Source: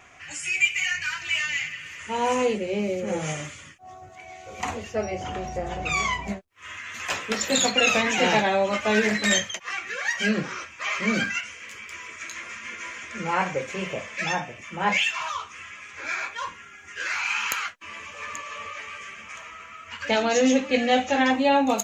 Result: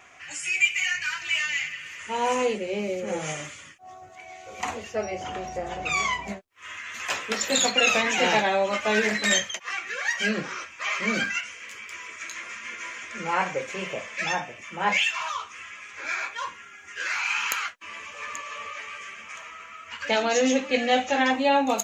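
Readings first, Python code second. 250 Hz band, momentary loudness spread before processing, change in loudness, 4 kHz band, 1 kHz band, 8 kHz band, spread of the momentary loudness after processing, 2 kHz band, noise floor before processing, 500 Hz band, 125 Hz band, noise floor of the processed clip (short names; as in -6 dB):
-4.0 dB, 18 LU, -1.0 dB, 0.0 dB, -0.5 dB, 0.0 dB, 17 LU, 0.0 dB, -46 dBFS, -1.5 dB, -5.5 dB, -47 dBFS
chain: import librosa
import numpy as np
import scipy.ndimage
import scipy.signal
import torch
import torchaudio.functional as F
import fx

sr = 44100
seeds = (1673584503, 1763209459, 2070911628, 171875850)

y = fx.low_shelf(x, sr, hz=200.0, db=-9.5)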